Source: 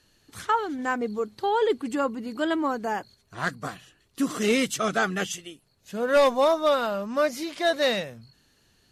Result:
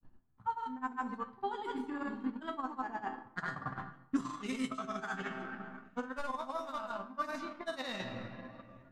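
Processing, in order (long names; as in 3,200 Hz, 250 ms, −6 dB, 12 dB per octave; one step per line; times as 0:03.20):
on a send: delay with a high-pass on its return 692 ms, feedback 64%, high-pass 2,200 Hz, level −14.5 dB
on the sum: low-pass that shuts in the quiet parts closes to 720 Hz, open at −18 dBFS
octave-band graphic EQ 125/500/1,000/8,000 Hz −3/−12/+10/+5 dB
granular cloud, pitch spread up and down by 0 semitones
tuned comb filter 130 Hz, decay 0.25 s, harmonics all, mix 80%
convolution reverb RT60 2.1 s, pre-delay 5 ms, DRR 10 dB
reversed playback
downward compressor 6 to 1, threshold −46 dBFS, peak gain reduction 21 dB
reversed playback
transient designer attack +8 dB, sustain −5 dB
low-shelf EQ 470 Hz +9 dB
level +4 dB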